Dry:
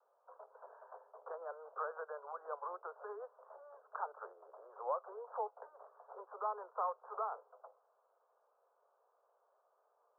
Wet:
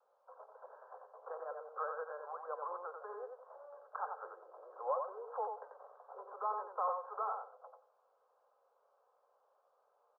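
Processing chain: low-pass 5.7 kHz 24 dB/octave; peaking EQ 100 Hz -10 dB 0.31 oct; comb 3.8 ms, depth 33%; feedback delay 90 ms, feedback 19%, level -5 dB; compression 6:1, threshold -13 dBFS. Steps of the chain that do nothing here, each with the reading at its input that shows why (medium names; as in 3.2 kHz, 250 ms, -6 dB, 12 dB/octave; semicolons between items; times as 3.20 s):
low-pass 5.7 kHz: input has nothing above 1.7 kHz; peaking EQ 100 Hz: input has nothing below 340 Hz; compression, threshold -13 dBFS: peak at its input -24.0 dBFS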